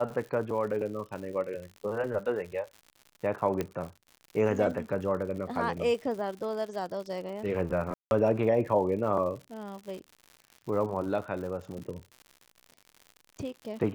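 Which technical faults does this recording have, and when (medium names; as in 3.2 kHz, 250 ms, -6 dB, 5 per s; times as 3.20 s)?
crackle 120 per s -39 dBFS
3.61 s: pop -17 dBFS
7.94–8.11 s: dropout 171 ms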